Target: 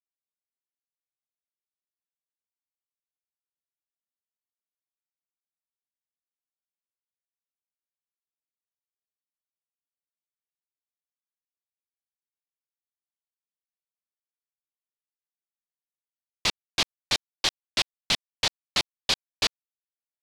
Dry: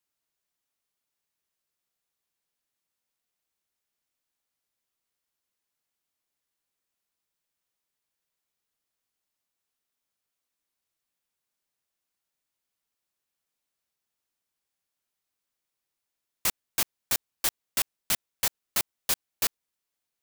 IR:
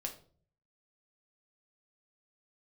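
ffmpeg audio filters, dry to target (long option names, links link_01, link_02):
-af "lowpass=frequency=4100:width_type=q:width=1.9,acrusher=bits=11:mix=0:aa=0.000001,equalizer=frequency=1500:width_type=o:width=0.77:gain=-4,volume=5dB"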